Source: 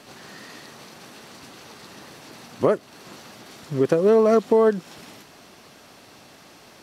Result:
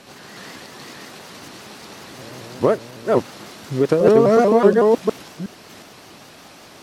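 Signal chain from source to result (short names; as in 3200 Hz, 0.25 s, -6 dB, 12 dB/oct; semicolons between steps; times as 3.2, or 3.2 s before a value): reverse delay 0.364 s, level -0.5 dB; 2.17–3.15 buzz 120 Hz, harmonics 5, -43 dBFS -1 dB/oct; shaped vibrato saw up 5.4 Hz, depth 160 cents; gain +2.5 dB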